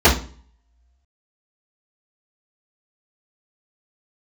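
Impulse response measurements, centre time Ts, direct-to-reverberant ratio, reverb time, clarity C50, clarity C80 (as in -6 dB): 22 ms, -13.5 dB, 0.40 s, 9.5 dB, 15.0 dB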